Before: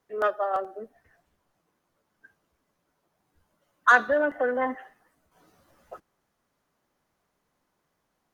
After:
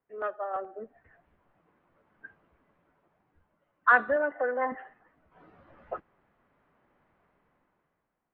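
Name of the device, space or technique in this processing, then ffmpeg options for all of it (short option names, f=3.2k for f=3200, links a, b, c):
action camera in a waterproof case: -filter_complex "[0:a]asettb=1/sr,asplit=3[a][b][c];[a]atrim=end=4.164[d];[b]atrim=start=4.16:end=4.72,asetpts=PTS-STARTPTS,afade=t=in:d=0.004:c=qsin,afade=t=out:st=0.556:d=0.004:c=qsin,bass=f=250:g=-15,treble=f=4k:g=-13[e];[c]atrim=start=4.716[f];[d][e]acrossfade=d=0.004:c1=hsin:c2=qsin[g];[g][f]acrossfade=d=0.004:c1=qsin:c2=hsin,lowpass=f=2.5k:w=0.5412,lowpass=f=2.5k:w=1.3066,dynaudnorm=f=270:g=7:m=16dB,volume=-8.5dB" -ar 22050 -c:a aac -b:a 96k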